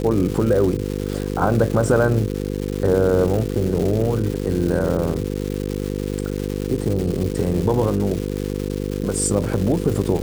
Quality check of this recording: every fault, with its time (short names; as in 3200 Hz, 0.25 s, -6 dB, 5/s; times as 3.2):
buzz 50 Hz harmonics 10 -25 dBFS
crackle 450/s -25 dBFS